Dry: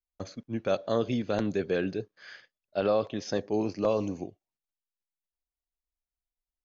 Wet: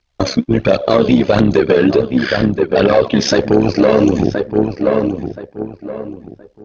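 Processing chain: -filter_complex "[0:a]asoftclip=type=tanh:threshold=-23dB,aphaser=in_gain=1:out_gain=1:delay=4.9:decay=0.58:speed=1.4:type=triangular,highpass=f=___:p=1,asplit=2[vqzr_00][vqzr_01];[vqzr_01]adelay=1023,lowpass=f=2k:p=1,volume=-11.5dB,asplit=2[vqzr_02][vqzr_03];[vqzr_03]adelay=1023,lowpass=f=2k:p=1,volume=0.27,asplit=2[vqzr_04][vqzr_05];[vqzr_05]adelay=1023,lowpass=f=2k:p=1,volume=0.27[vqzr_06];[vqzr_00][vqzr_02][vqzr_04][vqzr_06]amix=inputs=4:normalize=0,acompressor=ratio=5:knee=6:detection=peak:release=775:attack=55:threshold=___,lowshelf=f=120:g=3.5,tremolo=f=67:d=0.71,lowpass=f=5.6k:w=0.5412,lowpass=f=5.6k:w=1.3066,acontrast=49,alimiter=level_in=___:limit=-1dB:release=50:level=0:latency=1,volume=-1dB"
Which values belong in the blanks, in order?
60, -31dB, 24dB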